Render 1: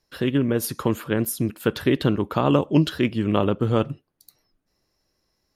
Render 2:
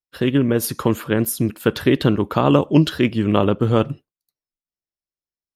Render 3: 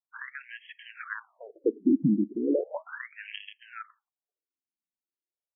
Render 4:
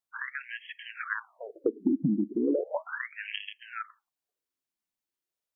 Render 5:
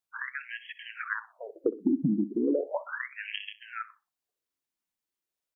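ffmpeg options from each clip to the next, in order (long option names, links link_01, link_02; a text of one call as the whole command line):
ffmpeg -i in.wav -af "agate=range=-33dB:threshold=-35dB:ratio=3:detection=peak,volume=4dB" out.wav
ffmpeg -i in.wav -filter_complex "[0:a]acrossover=split=260[link_01][link_02];[link_02]acompressor=threshold=-25dB:ratio=3[link_03];[link_01][link_03]amix=inputs=2:normalize=0,afftfilt=real='re*between(b*sr/1024,240*pow(2400/240,0.5+0.5*sin(2*PI*0.36*pts/sr))/1.41,240*pow(2400/240,0.5+0.5*sin(2*PI*0.36*pts/sr))*1.41)':imag='im*between(b*sr/1024,240*pow(2400/240,0.5+0.5*sin(2*PI*0.36*pts/sr))/1.41,240*pow(2400/240,0.5+0.5*sin(2*PI*0.36*pts/sr))*1.41)':win_size=1024:overlap=0.75" out.wav
ffmpeg -i in.wav -af "acompressor=threshold=-27dB:ratio=6,volume=4dB" out.wav
ffmpeg -i in.wav -af "aecho=1:1:63|126:0.141|0.0297" out.wav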